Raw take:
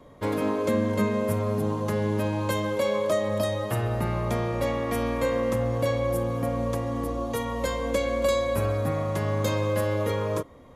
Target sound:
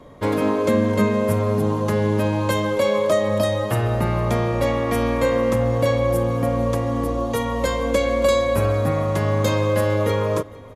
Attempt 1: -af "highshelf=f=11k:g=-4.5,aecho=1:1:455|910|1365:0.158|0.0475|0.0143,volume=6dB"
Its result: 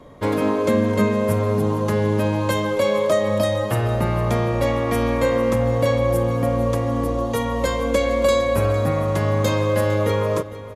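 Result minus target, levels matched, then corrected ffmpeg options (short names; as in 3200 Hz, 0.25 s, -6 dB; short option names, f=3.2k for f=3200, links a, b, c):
echo-to-direct +7.5 dB
-af "highshelf=f=11k:g=-4.5,aecho=1:1:455|910:0.0668|0.0201,volume=6dB"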